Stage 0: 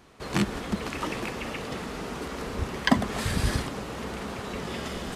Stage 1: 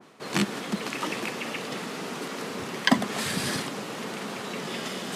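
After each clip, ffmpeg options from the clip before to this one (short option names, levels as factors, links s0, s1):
-af "highpass=f=150:w=0.5412,highpass=f=150:w=1.3066,areverse,acompressor=mode=upward:threshold=0.0224:ratio=2.5,areverse,adynamicequalizer=threshold=0.00708:dfrequency=1800:dqfactor=0.7:tfrequency=1800:tqfactor=0.7:attack=5:release=100:ratio=0.375:range=2:mode=boostabove:tftype=highshelf"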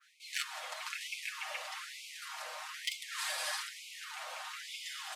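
-af "aecho=1:1:6.5:0.66,volume=5.96,asoftclip=hard,volume=0.168,afftfilt=real='re*gte(b*sr/1024,500*pow(2100/500,0.5+0.5*sin(2*PI*1.1*pts/sr)))':imag='im*gte(b*sr/1024,500*pow(2100/500,0.5+0.5*sin(2*PI*1.1*pts/sr)))':win_size=1024:overlap=0.75,volume=0.422"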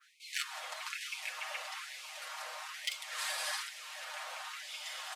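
-filter_complex "[0:a]equalizer=f=400:t=o:w=0.72:g=-4.5,areverse,acompressor=mode=upward:threshold=0.00355:ratio=2.5,areverse,asplit=2[s0][s1];[s1]adelay=664,lowpass=f=820:p=1,volume=0.631,asplit=2[s2][s3];[s3]adelay=664,lowpass=f=820:p=1,volume=0.43,asplit=2[s4][s5];[s5]adelay=664,lowpass=f=820:p=1,volume=0.43,asplit=2[s6][s7];[s7]adelay=664,lowpass=f=820:p=1,volume=0.43,asplit=2[s8][s9];[s9]adelay=664,lowpass=f=820:p=1,volume=0.43[s10];[s0][s2][s4][s6][s8][s10]amix=inputs=6:normalize=0"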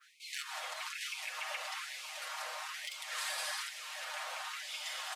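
-af "alimiter=level_in=2.11:limit=0.0631:level=0:latency=1:release=77,volume=0.473,volume=1.26"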